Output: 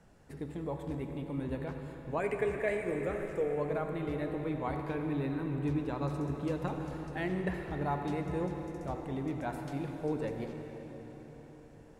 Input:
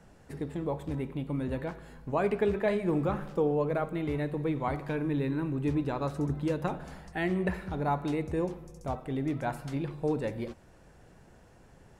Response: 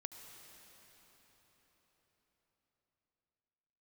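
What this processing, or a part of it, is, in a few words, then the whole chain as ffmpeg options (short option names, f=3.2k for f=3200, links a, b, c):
cathedral: -filter_complex "[0:a]asettb=1/sr,asplit=3[a][b][c];[a]atrim=end=2.204[d];[b]atrim=start=2.2:end=3.58,asetpts=PTS-STARTPTS,afade=t=in:d=0.004:c=qsin,afade=t=out:st=1.376:d=0.004:c=qsin,equalizer=f=125:t=o:w=1:g=-6,equalizer=f=250:t=o:w=1:g=-7,equalizer=f=500:t=o:w=1:g=5,equalizer=f=1k:t=o:w=1:g=-12,equalizer=f=2k:t=o:w=1:g=11,equalizer=f=4k:t=o:w=1:g=-10,equalizer=f=8k:t=o:w=1:g=10[e];[c]atrim=start=3.576[f];[d][e]acrossfade=d=0.004:c1=hsin:c2=qsin[g];[g][f]acrossfade=d=0.004:c1=qsin:c2=hsin[h];[1:a]atrim=start_sample=2205[i];[h][i]afir=irnorm=-1:irlink=0"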